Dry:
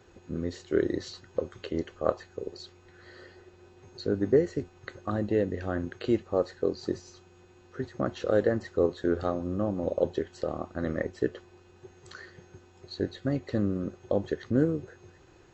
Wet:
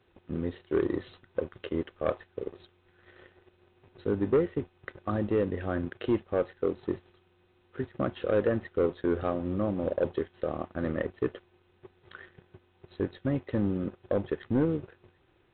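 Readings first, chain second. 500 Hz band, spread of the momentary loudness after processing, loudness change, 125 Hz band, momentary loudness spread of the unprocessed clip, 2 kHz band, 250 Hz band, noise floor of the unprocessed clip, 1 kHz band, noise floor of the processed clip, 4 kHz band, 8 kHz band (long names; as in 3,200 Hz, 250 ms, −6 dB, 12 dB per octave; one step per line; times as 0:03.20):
−1.0 dB, 11 LU, −1.0 dB, −0.5 dB, 17 LU, −0.5 dB, −0.5 dB, −57 dBFS, 0.0 dB, −67 dBFS, −6.0 dB, can't be measured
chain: leveller curve on the samples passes 2
level −7 dB
A-law companding 64 kbit/s 8,000 Hz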